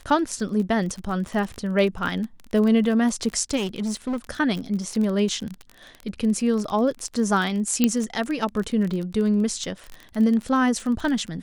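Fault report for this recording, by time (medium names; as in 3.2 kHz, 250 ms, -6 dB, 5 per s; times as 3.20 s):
crackle 27 per s -27 dBFS
3.56–4.17 s: clipped -22.5 dBFS
7.84 s: pop -5 dBFS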